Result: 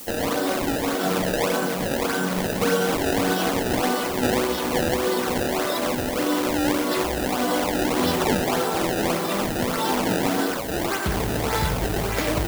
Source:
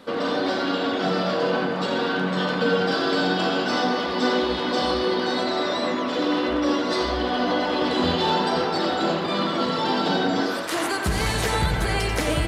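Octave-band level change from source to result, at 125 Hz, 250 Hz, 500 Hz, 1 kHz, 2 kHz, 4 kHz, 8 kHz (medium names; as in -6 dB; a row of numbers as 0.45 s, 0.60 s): +0.5 dB, 0.0 dB, 0.0 dB, -1.0 dB, -1.0 dB, -3.0 dB, +7.5 dB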